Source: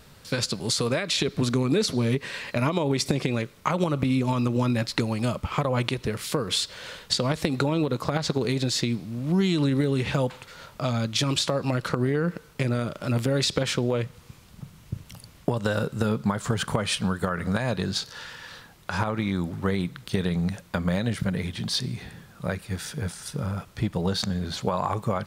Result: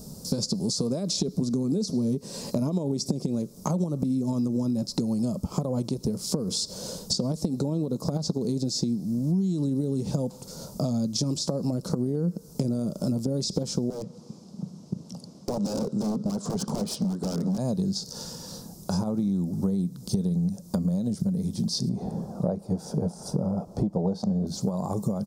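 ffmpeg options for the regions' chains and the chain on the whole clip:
ffmpeg -i in.wav -filter_complex "[0:a]asettb=1/sr,asplit=3[link_01][link_02][link_03];[link_01]atrim=end=13.904[link_04];[link_02]atrim=start=13.9:end=17.58,asetpts=PTS-STARTPTS,afade=type=in:duration=0.004:curve=qsin,afade=type=out:start_time=3.676:duration=0.004:curve=qsin,highpass=210,lowpass=3900,aeval=exprs='0.0447*(abs(mod(val(0)/0.0447+3,4)-2)-1)':channel_layout=same[link_05];[link_03]atrim=start=17.576[link_06];[link_04][link_05]acrossfade=duration=0.004:curve1=hsin:curve2=qsin[link_07];[link_07][link_06]acrossfade=duration=0.004:curve1=qsin:curve2=hsin,asettb=1/sr,asplit=3[link_08][link_09][link_10];[link_08]atrim=end=21.894[link_11];[link_09]atrim=start=21.89:end=24.47,asetpts=PTS-STARTPTS,afade=type=in:duration=0.004:curve=qsin,afade=type=out:start_time=2.576:duration=0.004:curve=qsin,lowpass=frequency=2100:poles=1,equalizer=frequency=720:width_type=o:width=1.9:gain=14[link_12];[link_10]atrim=start=24.466[link_13];[link_11][link_12]acrossfade=duration=0.004:curve1=hsin:curve2=qsin[link_14];[link_14][link_13]acrossfade=duration=0.004:curve1=qsin:curve2=hsin,acrossover=split=6800[link_15][link_16];[link_16]acompressor=threshold=-48dB:ratio=4:attack=1:release=60[link_17];[link_15][link_17]amix=inputs=2:normalize=0,firequalizer=gain_entry='entry(110,0);entry(190,13);entry(300,5);entry(660,1);entry(1800,-26);entry(3000,-18);entry(5100,7)':delay=0.05:min_phase=1,acompressor=threshold=-29dB:ratio=6,volume=4.5dB" out.wav

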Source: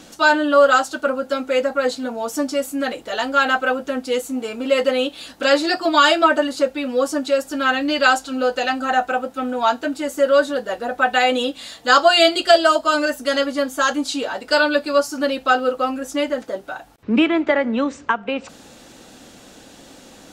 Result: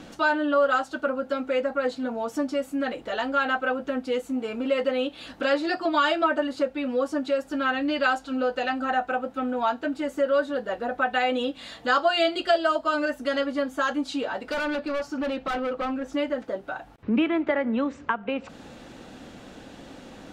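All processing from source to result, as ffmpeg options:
ffmpeg -i in.wav -filter_complex "[0:a]asettb=1/sr,asplit=3[link_01][link_02][link_03];[link_01]atrim=end=14.514[link_04];[link_02]atrim=start=14.51:end=16.13,asetpts=PTS-STARTPTS,afade=type=in:duration=0.004:curve=qsin,afade=type=out:start_time=1.616:duration=0.004:curve=qsin,equalizer=frequency=11000:width=0.79:gain=-11.5,asoftclip=type=hard:threshold=-21.5dB[link_05];[link_03]atrim=start=16.126[link_06];[link_04][link_05]acrossfade=duration=0.004:curve1=hsin:curve2=qsin[link_07];[link_07][link_06]acrossfade=duration=0.004:curve1=qsin:curve2=hsin,bass=frequency=250:gain=3,treble=frequency=4000:gain=-10,acompressor=threshold=-33dB:ratio=1.5,highshelf=frequency=8700:gain=-5" out.wav

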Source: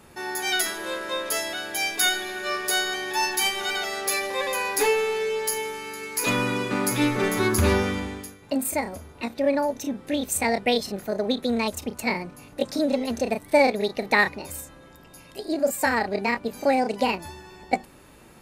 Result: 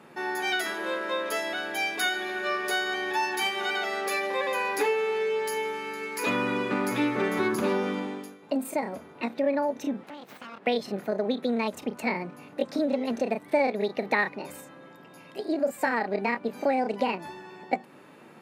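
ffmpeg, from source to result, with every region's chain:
ffmpeg -i in.wav -filter_complex "[0:a]asettb=1/sr,asplit=3[link_01][link_02][link_03];[link_01]atrim=end=7.554[link_04];[link_02]atrim=start=7.55:end=8.83,asetpts=PTS-STARTPTS,afade=type=in:duration=0.004:curve=qsin,afade=type=out:start_time=1.276:duration=0.004:curve=qsin,highpass=160,equalizer=frequency=1900:width=1.6:gain=-5.5[link_05];[link_03]atrim=start=8.826[link_06];[link_04][link_05]acrossfade=duration=0.004:curve1=hsin:curve2=qsin[link_07];[link_07][link_06]acrossfade=duration=0.004:curve1=qsin:curve2=hsin,asettb=1/sr,asplit=3[link_08][link_09][link_10];[link_08]atrim=end=10.034[link_11];[link_09]atrim=start=10.03:end=10.67,asetpts=PTS-STARTPTS,afade=type=in:duration=0.004:curve=qsin,afade=type=out:start_time=0.636:duration=0.004:curve=qsin,highshelf=frequency=11000:gain=-4.5,aeval=exprs='abs(val(0))':channel_layout=same,acompressor=threshold=-36dB:ratio=6:attack=3.2:release=140:knee=1:detection=peak[link_12];[link_10]atrim=start=10.666[link_13];[link_11][link_12]acrossfade=duration=0.004:curve1=hsin:curve2=qsin[link_14];[link_14][link_13]acrossfade=duration=0.004:curve1=qsin:curve2=hsin,highpass=frequency=150:width=0.5412,highpass=frequency=150:width=1.3066,bass=frequency=250:gain=-1,treble=frequency=4000:gain=-13,acompressor=threshold=-27dB:ratio=2,volume=1.5dB" out.wav

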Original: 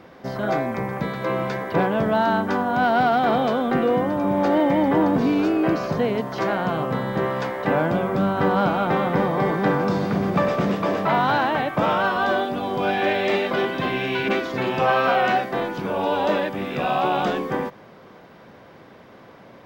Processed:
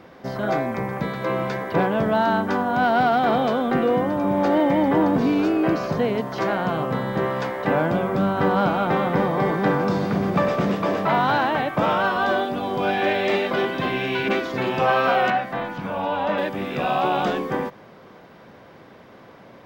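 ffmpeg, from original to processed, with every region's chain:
ffmpeg -i in.wav -filter_complex "[0:a]asettb=1/sr,asplit=3[link_01][link_02][link_03];[link_01]atrim=end=15.304[link_04];[link_02]atrim=start=15.3:end=16.38,asetpts=PTS-STARTPTS,afade=type=in:duration=0.004:curve=qsin,afade=type=out:start_time=1.076:duration=0.004:curve=qsin,acrossover=split=3200[link_05][link_06];[link_06]acompressor=threshold=-53dB:ratio=4:attack=1:release=60[link_07];[link_05][link_07]amix=inputs=2:normalize=0,equalizer=frequency=390:width_type=o:width=0.53:gain=-13[link_08];[link_03]atrim=start=16.376[link_09];[link_04][link_08]acrossfade=duration=0.004:curve1=hsin:curve2=qsin[link_10];[link_10][link_09]acrossfade=duration=0.004:curve1=qsin:curve2=hsin" out.wav

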